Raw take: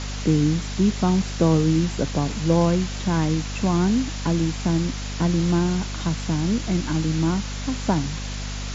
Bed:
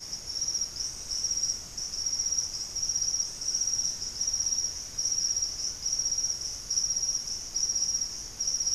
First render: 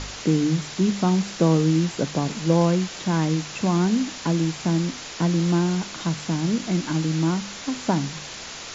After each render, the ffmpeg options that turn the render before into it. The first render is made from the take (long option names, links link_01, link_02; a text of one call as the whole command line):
ffmpeg -i in.wav -af "bandreject=frequency=50:width_type=h:width=4,bandreject=frequency=100:width_type=h:width=4,bandreject=frequency=150:width_type=h:width=4,bandreject=frequency=200:width_type=h:width=4,bandreject=frequency=250:width_type=h:width=4" out.wav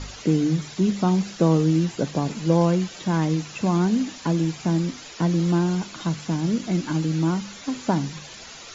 ffmpeg -i in.wav -af "afftdn=noise_reduction=10:noise_floor=-37" out.wav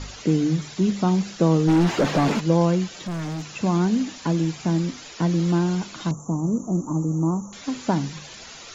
ffmpeg -i in.wav -filter_complex "[0:a]asplit=3[link_01][link_02][link_03];[link_01]afade=type=out:start_time=1.67:duration=0.02[link_04];[link_02]asplit=2[link_05][link_06];[link_06]highpass=frequency=720:poles=1,volume=30dB,asoftclip=type=tanh:threshold=-10dB[link_07];[link_05][link_07]amix=inputs=2:normalize=0,lowpass=frequency=1000:poles=1,volume=-6dB,afade=type=in:start_time=1.67:duration=0.02,afade=type=out:start_time=2.39:duration=0.02[link_08];[link_03]afade=type=in:start_time=2.39:duration=0.02[link_09];[link_04][link_08][link_09]amix=inputs=3:normalize=0,asettb=1/sr,asplit=3[link_10][link_11][link_12];[link_10]atrim=end=2.944[link_13];[link_11]atrim=start=2.94:end=3.44,asetpts=PTS-STARTPTS,afade=type=in:duration=0.004:curve=qsin,afade=type=out:start_time=0.496:duration=0.004:curve=qsin,asoftclip=type=hard:threshold=-26.5dB[link_14];[link_12]atrim=start=3.436[link_15];[link_13][link_14]acrossfade=duration=0.004:curve1=hsin:curve2=qsin[link_16];[link_16][link_15]acrossfade=duration=0.004:curve1=qsin:curve2=hsin,asettb=1/sr,asplit=3[link_17][link_18][link_19];[link_17]atrim=end=6.114[link_20];[link_18]atrim=start=6.11:end=7.53,asetpts=PTS-STARTPTS,afade=type=in:duration=0.004:curve=qsin,afade=type=out:start_time=1.416:duration=0.004:curve=qsin,asuperstop=centerf=2800:order=20:qfactor=0.58[link_21];[link_19]atrim=start=7.526[link_22];[link_20][link_21]acrossfade=duration=0.004:curve1=hsin:curve2=qsin[link_23];[link_23][link_22]acrossfade=duration=0.004:curve1=qsin:curve2=hsin" out.wav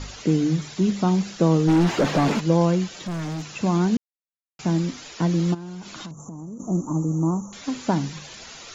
ffmpeg -i in.wav -filter_complex "[0:a]asplit=3[link_01][link_02][link_03];[link_01]afade=type=out:start_time=5.53:duration=0.02[link_04];[link_02]acompressor=threshold=-32dB:ratio=20:attack=3.2:release=140:knee=1:detection=peak,afade=type=in:start_time=5.53:duration=0.02,afade=type=out:start_time=6.59:duration=0.02[link_05];[link_03]afade=type=in:start_time=6.59:duration=0.02[link_06];[link_04][link_05][link_06]amix=inputs=3:normalize=0,asplit=3[link_07][link_08][link_09];[link_07]atrim=end=3.97,asetpts=PTS-STARTPTS,afade=type=out:start_time=3.966:duration=0.004:curve=hsin[link_10];[link_08]atrim=start=3.97:end=4.59,asetpts=PTS-STARTPTS,volume=0[link_11];[link_09]atrim=start=4.59,asetpts=PTS-STARTPTS,afade=type=in:duration=0.004:curve=hsin[link_12];[link_10][link_11][link_12]concat=n=3:v=0:a=1" out.wav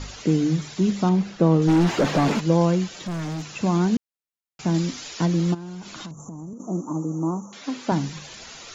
ffmpeg -i in.wav -filter_complex "[0:a]asettb=1/sr,asplit=3[link_01][link_02][link_03];[link_01]atrim=end=1.094[link_04];[link_02]atrim=start=1.09:end=1.62,asetpts=PTS-STARTPTS,afade=type=in:duration=0.004:curve=qsin,afade=type=out:start_time=0.526:duration=0.004:curve=qsin,aemphasis=mode=reproduction:type=75fm[link_05];[link_03]atrim=start=1.616[link_06];[link_04][link_05]acrossfade=duration=0.004:curve1=hsin:curve2=qsin[link_07];[link_07][link_06]acrossfade=duration=0.004:curve1=qsin:curve2=hsin,asettb=1/sr,asplit=3[link_08][link_09][link_10];[link_08]atrim=end=4.744[link_11];[link_09]atrim=start=4.74:end=5.26,asetpts=PTS-STARTPTS,afade=type=in:duration=0.004:curve=qsin,afade=type=out:start_time=0.516:duration=0.004:curve=qsin,equalizer=frequency=5400:width=0.54:gain=5[link_12];[link_10]atrim=start=5.256[link_13];[link_11][link_12]acrossfade=duration=0.004:curve1=hsin:curve2=qsin[link_14];[link_14][link_13]acrossfade=duration=0.004:curve1=qsin:curve2=hsin,asettb=1/sr,asplit=3[link_15][link_16][link_17];[link_15]atrim=end=6.534[link_18];[link_16]atrim=start=6.53:end=7.92,asetpts=PTS-STARTPTS,afade=type=in:duration=0.004:curve=qsin,afade=type=out:start_time=1.386:duration=0.004:curve=qsin,highpass=210,lowpass=6000[link_19];[link_17]atrim=start=7.916[link_20];[link_18][link_19]acrossfade=duration=0.004:curve1=hsin:curve2=qsin[link_21];[link_21][link_20]acrossfade=duration=0.004:curve1=qsin:curve2=hsin" out.wav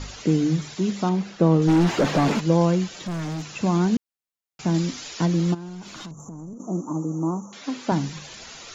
ffmpeg -i in.wav -filter_complex "[0:a]asettb=1/sr,asplit=3[link_01][link_02][link_03];[link_01]atrim=end=0.754[link_04];[link_02]atrim=start=0.75:end=1.41,asetpts=PTS-STARTPTS,afade=type=in:duration=0.004:curve=qsin,afade=type=out:start_time=0.656:duration=0.004:curve=qsin,lowshelf=frequency=140:gain=-10[link_05];[link_03]atrim=start=1.406[link_06];[link_04][link_05]acrossfade=duration=0.004:curve1=hsin:curve2=qsin[link_07];[link_07][link_06]acrossfade=duration=0.004:curve1=qsin:curve2=hsin,asettb=1/sr,asplit=3[link_08][link_09][link_10];[link_08]atrim=end=5.684[link_11];[link_09]atrim=start=5.68:end=6.57,asetpts=PTS-STARTPTS,afade=type=in:duration=0.004:curve=qsin,afade=type=out:start_time=0.886:duration=0.004:curve=qsin,aeval=exprs='(tanh(22.4*val(0)+0.2)-tanh(0.2))/22.4':channel_layout=same[link_12];[link_10]atrim=start=6.566[link_13];[link_11][link_12]acrossfade=duration=0.004:curve1=hsin:curve2=qsin[link_14];[link_14][link_13]acrossfade=duration=0.004:curve1=qsin:curve2=hsin" out.wav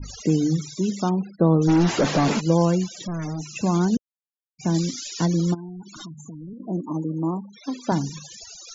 ffmpeg -i in.wav -af "adynamicequalizer=threshold=0.00355:dfrequency=6100:dqfactor=1.2:tfrequency=6100:tqfactor=1.2:attack=5:release=100:ratio=0.375:range=3:mode=boostabove:tftype=bell,afftfilt=real='re*gte(hypot(re,im),0.0224)':imag='im*gte(hypot(re,im),0.0224)':win_size=1024:overlap=0.75" out.wav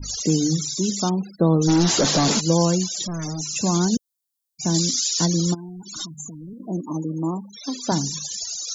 ffmpeg -i in.wav -af "aexciter=amount=5.4:drive=1.2:freq=3500" out.wav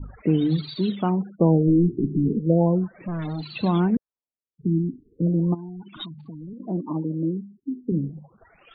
ffmpeg -i in.wav -af "adynamicsmooth=sensitivity=6:basefreq=4300,afftfilt=real='re*lt(b*sr/1024,390*pow(4700/390,0.5+0.5*sin(2*PI*0.36*pts/sr)))':imag='im*lt(b*sr/1024,390*pow(4700/390,0.5+0.5*sin(2*PI*0.36*pts/sr)))':win_size=1024:overlap=0.75" out.wav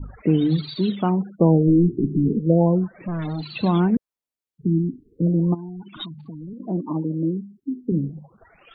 ffmpeg -i in.wav -af "volume=2dB" out.wav